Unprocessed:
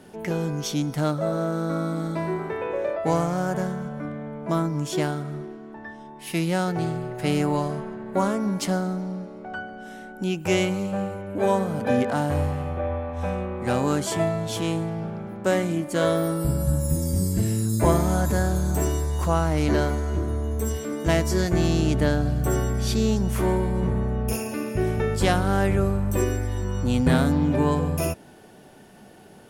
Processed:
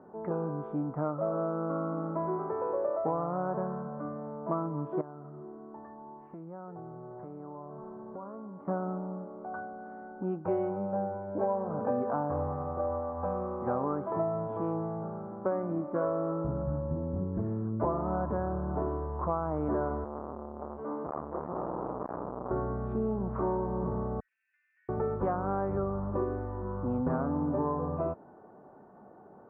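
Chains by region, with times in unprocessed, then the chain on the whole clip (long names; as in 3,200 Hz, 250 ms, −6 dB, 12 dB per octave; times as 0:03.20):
0:05.01–0:08.68: downward compressor, threshold −34 dBFS + high-frequency loss of the air 470 metres
0:10.48–0:11.70: notch filter 1,200 Hz, Q 5.6 + double-tracking delay 19 ms −6.5 dB
0:20.04–0:22.51: high-pass filter 48 Hz + hard clipping −20.5 dBFS + saturating transformer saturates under 520 Hz
0:24.20–0:24.89: Butterworth high-pass 1,700 Hz 96 dB per octave + downward compressor 4 to 1, threshold −43 dBFS
whole clip: elliptic low-pass filter 1,200 Hz, stop band 80 dB; spectral tilt +3 dB per octave; downward compressor, threshold −26 dBFS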